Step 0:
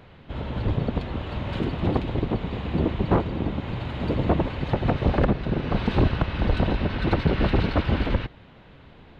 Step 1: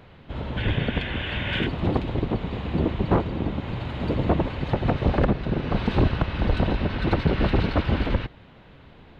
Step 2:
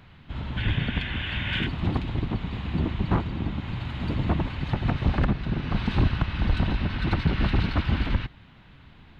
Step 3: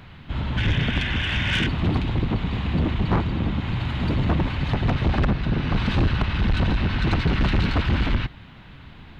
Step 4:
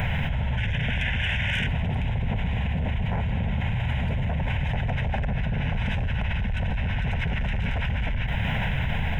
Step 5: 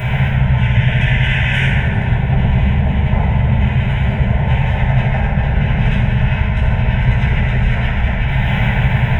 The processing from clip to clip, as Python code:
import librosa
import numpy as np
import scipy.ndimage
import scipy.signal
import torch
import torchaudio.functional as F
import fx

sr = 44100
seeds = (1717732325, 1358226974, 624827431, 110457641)

y1 = fx.spec_box(x, sr, start_s=0.58, length_s=1.09, low_hz=1400.0, high_hz=3700.0, gain_db=12)
y2 = fx.peak_eq(y1, sr, hz=500.0, db=-12.0, octaves=1.2)
y3 = 10.0 ** (-22.0 / 20.0) * np.tanh(y2 / 10.0 ** (-22.0 / 20.0))
y3 = y3 * librosa.db_to_amplitude(7.0)
y4 = fx.fixed_phaser(y3, sr, hz=1200.0, stages=6)
y4 = fx.env_flatten(y4, sr, amount_pct=100)
y4 = y4 * librosa.db_to_amplitude(-7.5)
y5 = fx.rev_fdn(y4, sr, rt60_s=2.7, lf_ratio=0.8, hf_ratio=0.35, size_ms=46.0, drr_db=-10.0)